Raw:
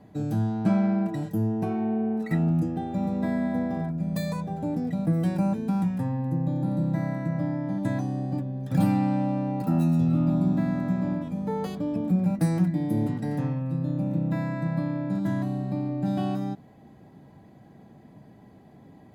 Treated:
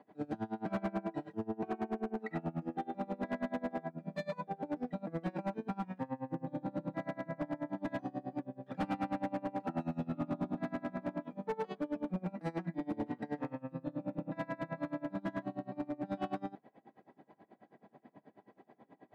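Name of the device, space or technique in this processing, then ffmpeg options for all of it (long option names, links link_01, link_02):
helicopter radio: -af "highpass=350,lowpass=2500,aeval=exprs='val(0)*pow(10,-26*(0.5-0.5*cos(2*PI*9.3*n/s))/20)':channel_layout=same,asoftclip=type=hard:threshold=-31.5dB,volume=2dB"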